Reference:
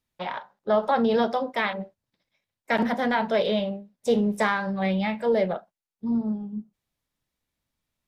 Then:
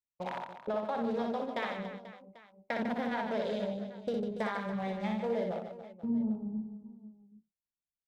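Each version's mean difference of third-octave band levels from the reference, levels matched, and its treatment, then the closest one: 5.5 dB: local Wiener filter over 25 samples; gate -47 dBFS, range -23 dB; compression, threshold -29 dBFS, peak gain reduction 11.5 dB; reverse bouncing-ball echo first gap 60 ms, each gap 1.5×, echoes 5; trim -3.5 dB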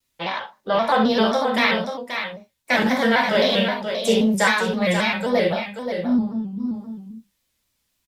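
7.5 dB: treble shelf 2 kHz +10.5 dB; on a send: delay 532 ms -7.5 dB; on the sum: gated-style reverb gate 90 ms flat, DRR -0.5 dB; vibrato with a chosen wave square 3.8 Hz, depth 100 cents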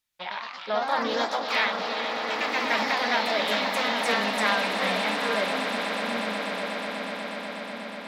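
14.0 dB: tilt shelf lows -8.5 dB, about 800 Hz; repeats whose band climbs or falls 402 ms, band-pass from 3.3 kHz, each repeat -1.4 oct, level -3.5 dB; ever faster or slower copies 131 ms, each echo +2 st, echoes 3; echo with a slow build-up 122 ms, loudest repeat 8, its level -12 dB; trim -5 dB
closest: first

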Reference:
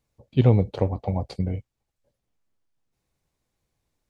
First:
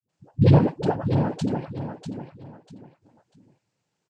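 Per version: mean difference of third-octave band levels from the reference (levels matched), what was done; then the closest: 9.5 dB: noise-vocoded speech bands 8; phase dispersion highs, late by 87 ms, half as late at 360 Hz; on a send: feedback delay 644 ms, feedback 28%, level -8 dB; on the sum: trim +2.5 dB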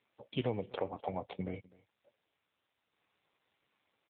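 6.5 dB: high-pass 1.1 kHz 6 dB/octave; compression 2.5:1, threshold -49 dBFS, peak gain reduction 16 dB; delay 252 ms -23.5 dB; trim +11.5 dB; AMR-NB 7.4 kbps 8 kHz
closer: second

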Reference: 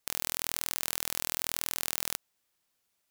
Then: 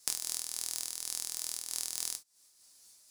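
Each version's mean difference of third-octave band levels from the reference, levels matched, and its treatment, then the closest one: 8.5 dB: high-order bell 6.8 kHz +14.5 dB; compression 16:1, threshold -36 dBFS, peak gain reduction 21.5 dB; gated-style reverb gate 90 ms falling, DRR 5.5 dB; random flutter of the level, depth 60%; trim +8.5 dB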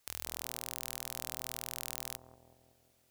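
1.5 dB: single-diode clipper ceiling -17 dBFS; peaking EQ 79 Hz +9.5 dB 0.34 oct; on a send: bucket-brigade echo 187 ms, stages 1024, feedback 60%, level -4 dB; on the sum: trim +5 dB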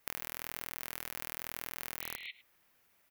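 3.0 dB: spectral replace 2.04–2.28 s, 1.9–4.3 kHz before; graphic EQ 2/4/8 kHz +4/-6/-9 dB; compression 8:1, threshold -43 dBFS, peak gain reduction 15.5 dB; echo from a far wall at 18 m, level -17 dB; trim +9.5 dB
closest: second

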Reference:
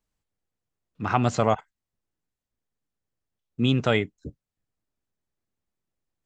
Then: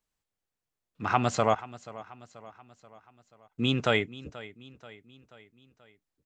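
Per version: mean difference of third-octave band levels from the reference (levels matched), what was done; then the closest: 2.5 dB: bass shelf 430 Hz -7 dB; on a send: feedback delay 483 ms, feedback 53%, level -18 dB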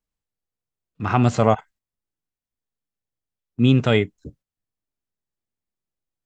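1.5 dB: gate -51 dBFS, range -10 dB; harmonic-percussive split harmonic +7 dB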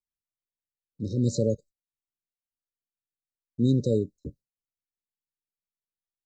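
10.0 dB: FFT band-reject 580–3700 Hz; gate with hold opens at -52 dBFS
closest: second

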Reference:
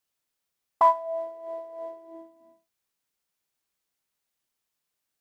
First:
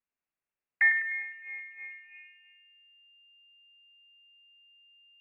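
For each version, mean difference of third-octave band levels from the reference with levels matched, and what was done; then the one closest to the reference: 8.5 dB: in parallel at -9.5 dB: hysteresis with a dead band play -31.5 dBFS; on the sum: bucket-brigade echo 101 ms, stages 1024, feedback 53%, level -7.5 dB; frequency inversion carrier 2.8 kHz; trim -7 dB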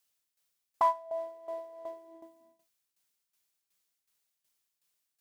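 2.0 dB: treble shelf 2.3 kHz +8.5 dB; in parallel at -1 dB: compression, threshold -33 dBFS, peak gain reduction 18 dB; on the sum: tremolo saw down 2.7 Hz, depth 75%; trim -7 dB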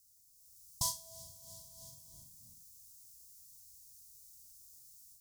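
17.0 dB: inverse Chebyshev band-stop 300–2400 Hz, stop band 50 dB; level rider gain up to 9 dB; on a send: flutter echo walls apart 7.7 m, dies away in 0.23 s; on the sum: trim +16.5 dB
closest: second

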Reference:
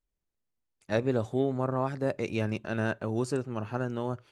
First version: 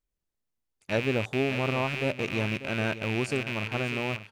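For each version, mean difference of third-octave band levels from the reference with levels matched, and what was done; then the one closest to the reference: 7.5 dB: rattle on loud lows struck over -42 dBFS, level -21 dBFS; on a send: delay 593 ms -13 dB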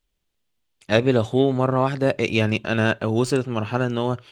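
1.5 dB: tracing distortion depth 0.021 ms; peaking EQ 3.2 kHz +9 dB 0.92 oct; trim +9 dB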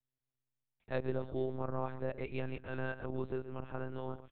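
5.5 dB: delay 124 ms -13.5 dB; monotone LPC vocoder at 8 kHz 130 Hz; trim -8 dB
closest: second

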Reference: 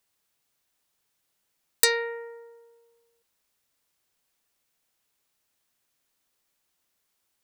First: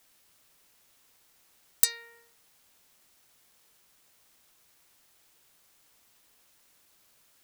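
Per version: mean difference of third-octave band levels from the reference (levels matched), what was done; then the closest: 8.5 dB: pre-emphasis filter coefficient 0.97; expander -54 dBFS; in parallel at -11.5 dB: word length cut 8-bit, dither triangular; on the sum: trim -5 dB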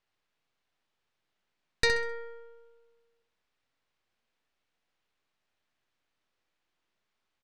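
5.0 dB: partial rectifier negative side -7 dB; low-pass 3.4 kHz 12 dB/octave; de-hum 69.61 Hz, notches 18; on a send: feedback delay 65 ms, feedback 32%, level -8 dB; on the sum: trim +1 dB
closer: second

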